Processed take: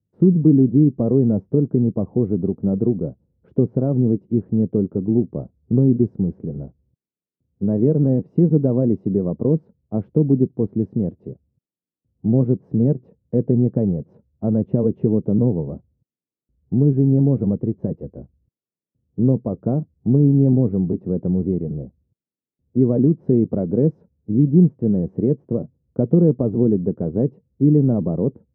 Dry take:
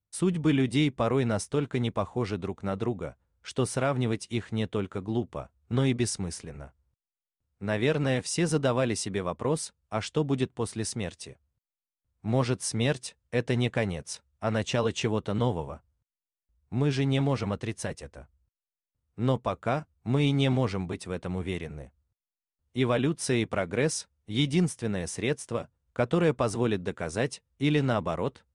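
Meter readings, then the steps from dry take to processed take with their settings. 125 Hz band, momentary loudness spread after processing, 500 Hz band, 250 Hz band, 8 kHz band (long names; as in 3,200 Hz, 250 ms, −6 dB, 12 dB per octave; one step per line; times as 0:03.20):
+10.5 dB, 11 LU, +7.0 dB, +12.0 dB, below −40 dB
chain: spectral tilt −4.5 dB per octave
in parallel at +3 dB: downward compressor, threshold −23 dBFS, peak gain reduction 12.5 dB
on the sum: flat-topped band-pass 280 Hz, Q 0.81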